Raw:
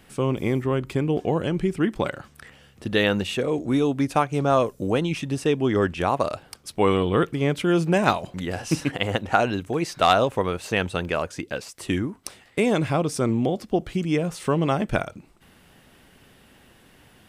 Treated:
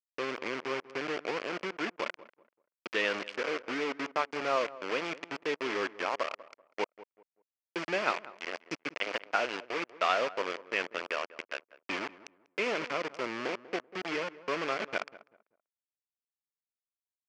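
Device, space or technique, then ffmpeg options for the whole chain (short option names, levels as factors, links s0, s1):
hand-held game console: -filter_complex "[0:a]asettb=1/sr,asplit=3[s0][s1][s2];[s0]atrim=end=6.844[s3];[s1]atrim=start=6.84:end=7.76,asetpts=PTS-STARTPTS,afade=t=in:d=0.004:c=qsin,afade=t=out:st=0.916:d=0.004:c=qsin,aderivative[s4];[s2]atrim=start=7.756[s5];[s3][s4]acrossfade=d=0.004:c1=hsin:c2=qsin[s6];[s6][s5]acrossfade=d=0.004:c1=qsin:c2=hsin,acrusher=bits=3:mix=0:aa=0.000001,highpass=480,equalizer=f=780:t=q:w=4:g=-7,equalizer=f=2300:t=q:w=4:g=4,equalizer=f=3800:t=q:w=4:g=-9,lowpass=f=4800:w=0.5412,lowpass=f=4800:w=1.3066,asplit=2[s7][s8];[s8]adelay=193,lowpass=f=1300:p=1,volume=0.15,asplit=2[s9][s10];[s10]adelay=193,lowpass=f=1300:p=1,volume=0.28,asplit=2[s11][s12];[s12]adelay=193,lowpass=f=1300:p=1,volume=0.28[s13];[s7][s9][s11][s13]amix=inputs=4:normalize=0,volume=0.447"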